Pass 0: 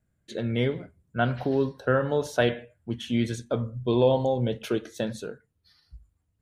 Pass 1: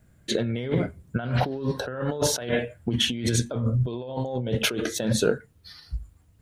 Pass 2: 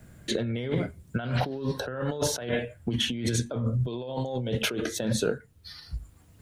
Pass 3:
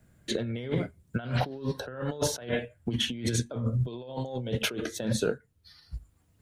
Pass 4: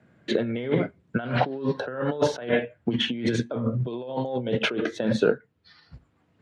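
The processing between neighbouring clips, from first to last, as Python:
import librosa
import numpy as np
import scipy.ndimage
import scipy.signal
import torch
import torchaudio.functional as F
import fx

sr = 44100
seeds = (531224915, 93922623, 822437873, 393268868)

y1 = fx.over_compress(x, sr, threshold_db=-35.0, ratio=-1.0)
y1 = F.gain(torch.from_numpy(y1), 8.0).numpy()
y2 = fx.band_squash(y1, sr, depth_pct=40)
y2 = F.gain(torch.from_numpy(y2), -3.0).numpy()
y3 = fx.upward_expand(y2, sr, threshold_db=-44.0, expansion=1.5)
y4 = fx.bandpass_edges(y3, sr, low_hz=180.0, high_hz=2700.0)
y4 = F.gain(torch.from_numpy(y4), 7.5).numpy()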